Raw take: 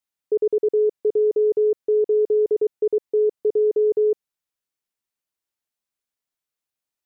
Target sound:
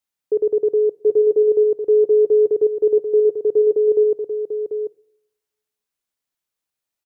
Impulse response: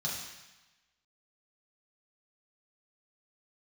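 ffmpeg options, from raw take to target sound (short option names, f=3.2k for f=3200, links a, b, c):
-filter_complex "[0:a]aecho=1:1:741:0.422,asplit=2[a][b];[1:a]atrim=start_sample=2205,adelay=14[c];[b][c]afir=irnorm=-1:irlink=0,volume=-23.5dB[d];[a][d]amix=inputs=2:normalize=0,volume=2dB"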